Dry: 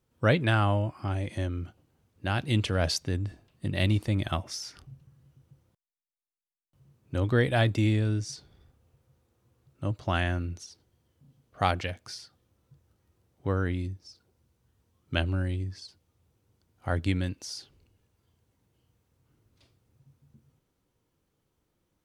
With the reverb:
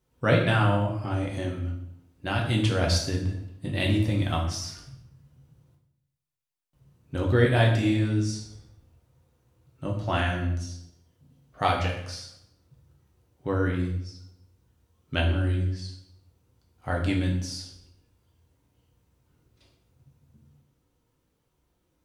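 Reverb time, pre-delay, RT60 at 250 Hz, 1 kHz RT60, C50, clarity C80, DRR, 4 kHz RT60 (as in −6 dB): 0.75 s, 4 ms, 0.90 s, 0.70 s, 6.0 dB, 9.0 dB, −1.5 dB, 0.65 s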